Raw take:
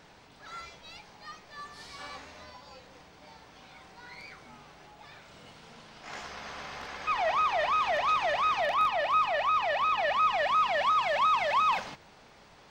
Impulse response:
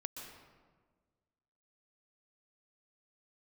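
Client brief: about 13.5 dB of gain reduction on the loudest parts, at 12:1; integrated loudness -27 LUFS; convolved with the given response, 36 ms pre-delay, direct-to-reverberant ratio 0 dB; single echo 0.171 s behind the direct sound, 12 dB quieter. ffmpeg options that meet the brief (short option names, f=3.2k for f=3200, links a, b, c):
-filter_complex "[0:a]acompressor=threshold=-36dB:ratio=12,aecho=1:1:171:0.251,asplit=2[a][b];[1:a]atrim=start_sample=2205,adelay=36[c];[b][c]afir=irnorm=-1:irlink=0,volume=2dB[d];[a][d]amix=inputs=2:normalize=0,volume=10dB"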